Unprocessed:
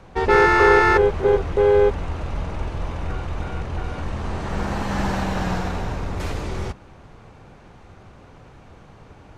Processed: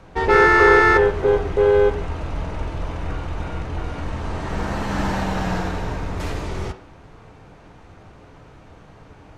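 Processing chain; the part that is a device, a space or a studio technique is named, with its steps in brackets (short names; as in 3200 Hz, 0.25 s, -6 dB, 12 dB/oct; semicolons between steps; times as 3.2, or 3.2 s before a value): filtered reverb send (on a send: HPF 260 Hz 24 dB/oct + LPF 4000 Hz + reverb RT60 0.55 s, pre-delay 3 ms, DRR 6 dB)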